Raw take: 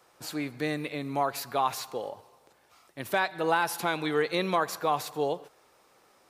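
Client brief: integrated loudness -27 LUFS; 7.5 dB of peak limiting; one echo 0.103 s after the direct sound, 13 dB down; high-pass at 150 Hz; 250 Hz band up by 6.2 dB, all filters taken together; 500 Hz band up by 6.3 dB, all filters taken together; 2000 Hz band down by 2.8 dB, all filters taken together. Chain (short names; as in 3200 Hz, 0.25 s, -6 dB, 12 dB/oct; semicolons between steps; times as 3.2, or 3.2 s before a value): HPF 150 Hz; bell 250 Hz +6.5 dB; bell 500 Hz +6 dB; bell 2000 Hz -4.5 dB; limiter -18 dBFS; echo 0.103 s -13 dB; gain +2 dB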